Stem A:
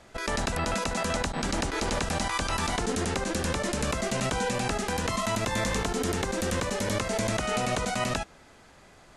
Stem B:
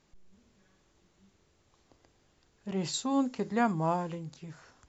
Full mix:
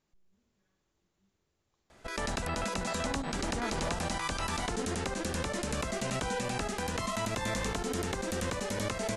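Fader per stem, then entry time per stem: -5.0, -11.0 dB; 1.90, 0.00 s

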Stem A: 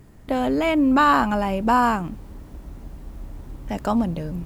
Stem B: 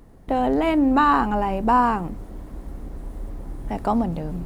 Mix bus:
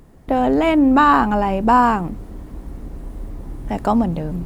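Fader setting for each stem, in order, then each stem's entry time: -4.5, +1.0 dB; 0.00, 0.00 s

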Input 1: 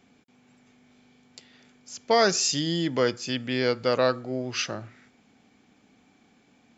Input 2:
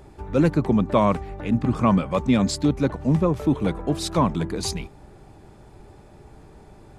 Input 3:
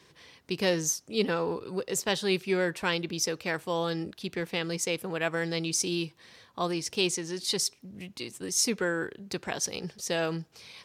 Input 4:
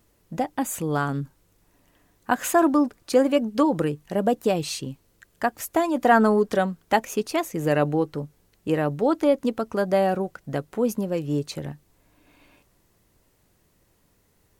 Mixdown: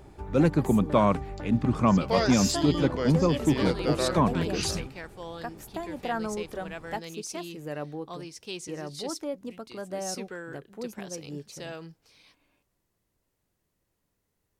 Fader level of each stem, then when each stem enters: -7.0, -3.0, -10.5, -14.0 dB; 0.00, 0.00, 1.50, 0.00 s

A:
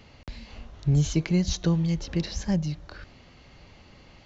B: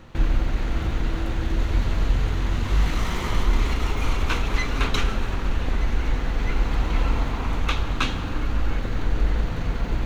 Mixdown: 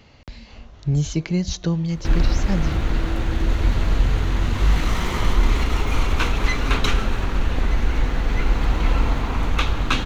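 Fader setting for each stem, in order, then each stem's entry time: +1.5, +3.0 dB; 0.00, 1.90 s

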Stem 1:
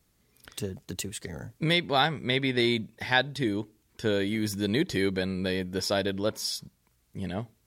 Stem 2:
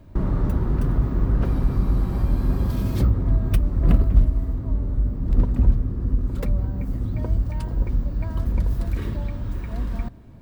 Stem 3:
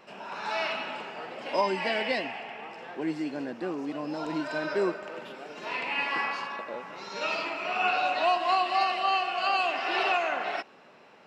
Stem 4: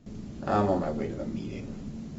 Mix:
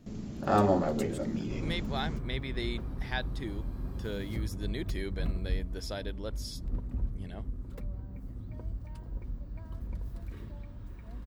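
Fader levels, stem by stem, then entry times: -11.5 dB, -16.0 dB, off, +0.5 dB; 0.00 s, 1.35 s, off, 0.00 s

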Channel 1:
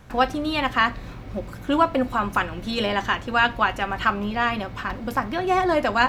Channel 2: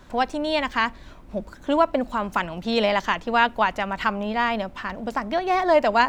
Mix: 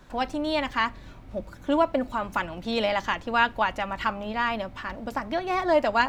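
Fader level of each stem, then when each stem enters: -12.5, -4.0 dB; 0.00, 0.00 s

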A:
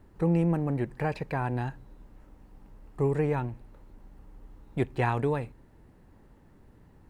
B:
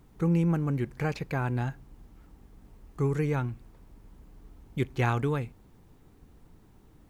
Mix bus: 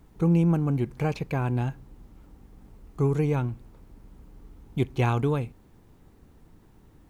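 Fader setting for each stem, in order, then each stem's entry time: -6.0, +0.5 dB; 0.00, 0.00 s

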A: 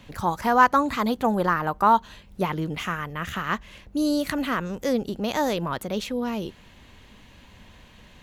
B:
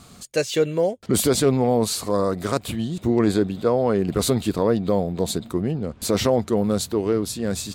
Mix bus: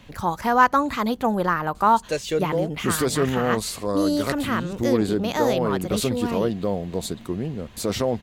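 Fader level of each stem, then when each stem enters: +0.5, -4.0 dB; 0.00, 1.75 s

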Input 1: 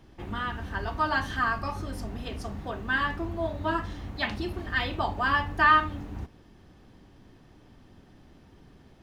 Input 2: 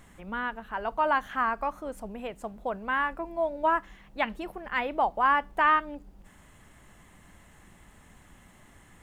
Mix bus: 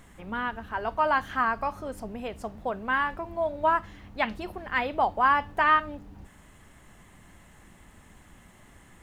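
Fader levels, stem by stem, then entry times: -10.5, +1.0 dB; 0.00, 0.00 s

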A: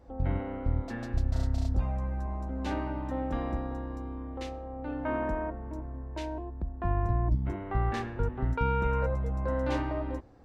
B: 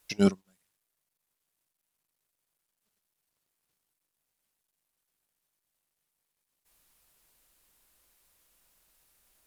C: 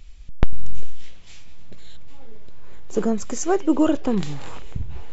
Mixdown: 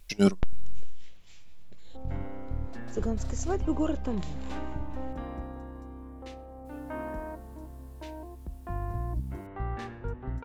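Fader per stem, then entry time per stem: -5.5, +1.0, -10.5 dB; 1.85, 0.00, 0.00 s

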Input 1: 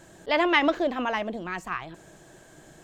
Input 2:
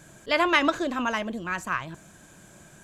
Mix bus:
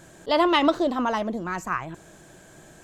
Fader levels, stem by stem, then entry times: +0.5, -4.0 dB; 0.00, 0.00 s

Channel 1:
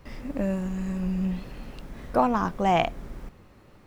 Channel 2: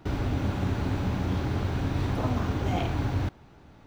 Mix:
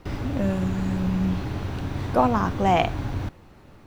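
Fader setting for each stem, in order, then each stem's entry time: +1.5, -1.5 dB; 0.00, 0.00 s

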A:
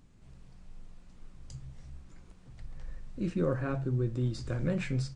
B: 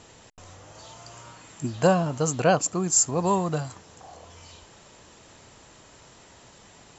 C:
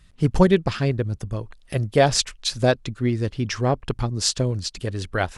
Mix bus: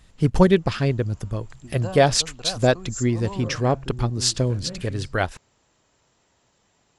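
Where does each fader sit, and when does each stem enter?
-5.5, -14.0, +0.5 dB; 0.00, 0.00, 0.00 s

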